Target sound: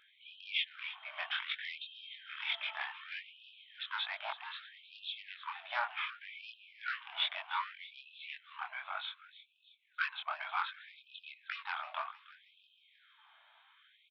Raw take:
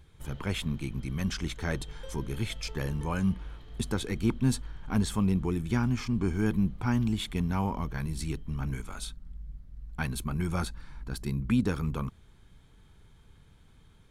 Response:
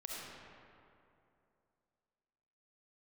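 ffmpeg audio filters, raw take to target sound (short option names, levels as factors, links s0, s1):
-filter_complex "[0:a]bandreject=f=60:t=h:w=6,bandreject=f=120:t=h:w=6,bandreject=f=180:t=h:w=6,aresample=8000,aresample=44100,aresample=11025,asoftclip=type=tanh:threshold=0.0596,aresample=44100,flanger=delay=20:depth=5.7:speed=1.9,asplit=2[s0][s1];[s1]aecho=0:1:315|630|945|1260|1575:0.178|0.0889|0.0445|0.0222|0.0111[s2];[s0][s2]amix=inputs=2:normalize=0,afftfilt=real='re*gte(b*sr/1024,580*pow(2500/580,0.5+0.5*sin(2*PI*0.65*pts/sr)))':imag='im*gte(b*sr/1024,580*pow(2500/580,0.5+0.5*sin(2*PI*0.65*pts/sr)))':win_size=1024:overlap=0.75,volume=2.66"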